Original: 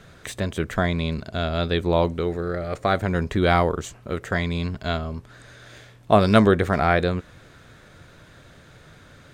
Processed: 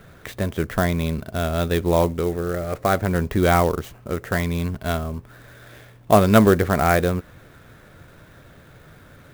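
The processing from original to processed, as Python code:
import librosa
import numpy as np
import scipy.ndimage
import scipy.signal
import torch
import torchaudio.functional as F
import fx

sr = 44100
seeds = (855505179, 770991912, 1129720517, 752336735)

y = fx.high_shelf(x, sr, hz=4100.0, db=-9.5)
y = fx.clock_jitter(y, sr, seeds[0], jitter_ms=0.029)
y = y * librosa.db_to_amplitude(2.0)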